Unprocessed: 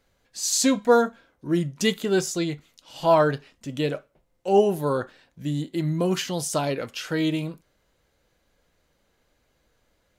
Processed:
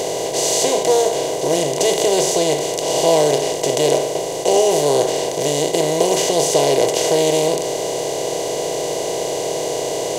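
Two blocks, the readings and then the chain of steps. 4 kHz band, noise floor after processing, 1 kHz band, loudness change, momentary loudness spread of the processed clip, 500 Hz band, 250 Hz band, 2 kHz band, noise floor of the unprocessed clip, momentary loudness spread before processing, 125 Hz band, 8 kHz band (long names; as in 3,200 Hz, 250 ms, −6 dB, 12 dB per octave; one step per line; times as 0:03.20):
+11.0 dB, −24 dBFS, +7.0 dB, +6.5 dB, 7 LU, +9.5 dB, +1.5 dB, +4.5 dB, −70 dBFS, 16 LU, +0.5 dB, +11.5 dB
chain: compressor on every frequency bin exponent 0.2
phaser with its sweep stopped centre 550 Hz, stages 4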